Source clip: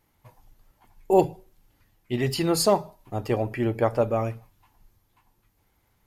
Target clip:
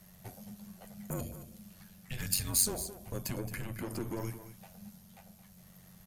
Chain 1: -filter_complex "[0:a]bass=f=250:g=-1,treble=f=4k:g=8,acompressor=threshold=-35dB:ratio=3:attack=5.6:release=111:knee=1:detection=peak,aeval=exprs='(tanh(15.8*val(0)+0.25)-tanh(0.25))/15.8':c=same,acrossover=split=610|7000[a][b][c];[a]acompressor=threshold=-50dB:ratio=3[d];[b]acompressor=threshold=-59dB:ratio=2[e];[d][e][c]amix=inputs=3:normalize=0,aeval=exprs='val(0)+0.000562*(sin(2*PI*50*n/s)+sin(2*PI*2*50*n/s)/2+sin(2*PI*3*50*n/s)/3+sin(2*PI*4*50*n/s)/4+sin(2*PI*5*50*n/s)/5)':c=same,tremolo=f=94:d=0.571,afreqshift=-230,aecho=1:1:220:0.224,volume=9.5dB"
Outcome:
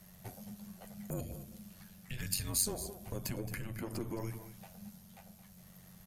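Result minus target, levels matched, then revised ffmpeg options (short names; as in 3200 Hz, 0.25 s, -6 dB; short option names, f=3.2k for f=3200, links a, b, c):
compressor: peak gain reduction +6.5 dB
-filter_complex "[0:a]bass=f=250:g=-1,treble=f=4k:g=8,acompressor=threshold=-25.5dB:ratio=3:attack=5.6:release=111:knee=1:detection=peak,aeval=exprs='(tanh(15.8*val(0)+0.25)-tanh(0.25))/15.8':c=same,acrossover=split=610|7000[a][b][c];[a]acompressor=threshold=-50dB:ratio=3[d];[b]acompressor=threshold=-59dB:ratio=2[e];[d][e][c]amix=inputs=3:normalize=0,aeval=exprs='val(0)+0.000562*(sin(2*PI*50*n/s)+sin(2*PI*2*50*n/s)/2+sin(2*PI*3*50*n/s)/3+sin(2*PI*4*50*n/s)/4+sin(2*PI*5*50*n/s)/5)':c=same,tremolo=f=94:d=0.571,afreqshift=-230,aecho=1:1:220:0.224,volume=9.5dB"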